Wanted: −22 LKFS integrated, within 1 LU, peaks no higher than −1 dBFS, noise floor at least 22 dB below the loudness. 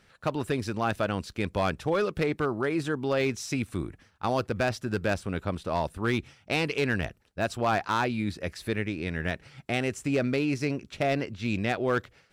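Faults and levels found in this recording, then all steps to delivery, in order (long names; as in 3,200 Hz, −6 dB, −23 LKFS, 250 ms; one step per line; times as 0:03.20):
share of clipped samples 0.5%; peaks flattened at −18.5 dBFS; integrated loudness −29.5 LKFS; sample peak −18.5 dBFS; target loudness −22.0 LKFS
→ clipped peaks rebuilt −18.5 dBFS
level +7.5 dB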